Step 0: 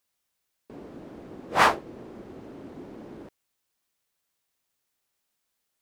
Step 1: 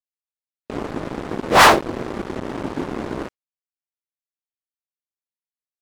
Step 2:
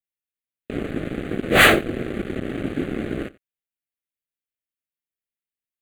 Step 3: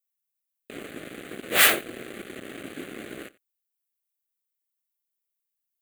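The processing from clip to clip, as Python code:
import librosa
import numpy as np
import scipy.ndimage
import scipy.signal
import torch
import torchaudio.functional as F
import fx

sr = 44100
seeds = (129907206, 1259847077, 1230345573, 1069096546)

y1 = fx.noise_reduce_blind(x, sr, reduce_db=17)
y1 = fx.leveller(y1, sr, passes=5)
y2 = fx.fixed_phaser(y1, sr, hz=2300.0, stages=4)
y2 = y2 + 10.0 ** (-21.5 / 20.0) * np.pad(y2, (int(89 * sr / 1000.0), 0))[:len(y2)]
y2 = y2 * librosa.db_to_amplitude(2.5)
y3 = fx.diode_clip(y2, sr, knee_db=-7.5)
y3 = fx.riaa(y3, sr, side='recording')
y3 = y3 * librosa.db_to_amplitude(-7.0)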